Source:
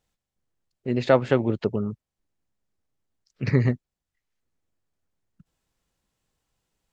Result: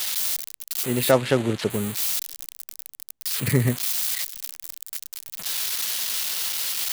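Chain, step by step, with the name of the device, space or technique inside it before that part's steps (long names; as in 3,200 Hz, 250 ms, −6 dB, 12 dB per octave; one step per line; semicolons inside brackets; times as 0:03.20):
budget class-D amplifier (gap after every zero crossing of 0.084 ms; spike at every zero crossing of −12.5 dBFS)
dynamic equaliser 4,200 Hz, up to +4 dB, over −44 dBFS, Q 1
0:01.11–0:01.70: low-pass filter 5,300 Hz 12 dB per octave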